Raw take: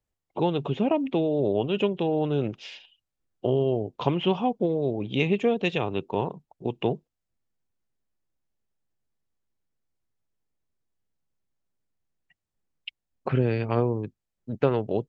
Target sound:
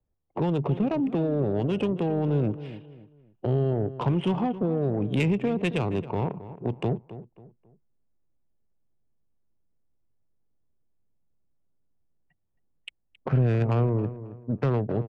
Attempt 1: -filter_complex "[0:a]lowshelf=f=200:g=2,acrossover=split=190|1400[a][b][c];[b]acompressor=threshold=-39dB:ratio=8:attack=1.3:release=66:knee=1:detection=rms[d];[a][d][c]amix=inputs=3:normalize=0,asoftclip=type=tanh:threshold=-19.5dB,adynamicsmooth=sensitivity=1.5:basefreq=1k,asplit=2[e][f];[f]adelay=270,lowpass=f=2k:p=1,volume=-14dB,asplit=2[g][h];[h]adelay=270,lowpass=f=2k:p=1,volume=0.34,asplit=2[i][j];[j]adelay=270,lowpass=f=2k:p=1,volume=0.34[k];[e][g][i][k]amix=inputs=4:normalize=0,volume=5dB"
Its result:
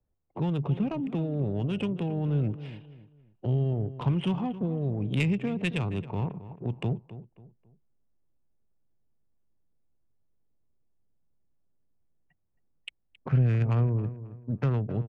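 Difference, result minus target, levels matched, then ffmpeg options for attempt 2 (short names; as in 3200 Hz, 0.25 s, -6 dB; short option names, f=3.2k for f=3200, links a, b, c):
compressor: peak gain reduction +10 dB
-filter_complex "[0:a]lowshelf=f=200:g=2,acrossover=split=190|1400[a][b][c];[b]acompressor=threshold=-27.5dB:ratio=8:attack=1.3:release=66:knee=1:detection=rms[d];[a][d][c]amix=inputs=3:normalize=0,asoftclip=type=tanh:threshold=-19.5dB,adynamicsmooth=sensitivity=1.5:basefreq=1k,asplit=2[e][f];[f]adelay=270,lowpass=f=2k:p=1,volume=-14dB,asplit=2[g][h];[h]adelay=270,lowpass=f=2k:p=1,volume=0.34,asplit=2[i][j];[j]adelay=270,lowpass=f=2k:p=1,volume=0.34[k];[e][g][i][k]amix=inputs=4:normalize=0,volume=5dB"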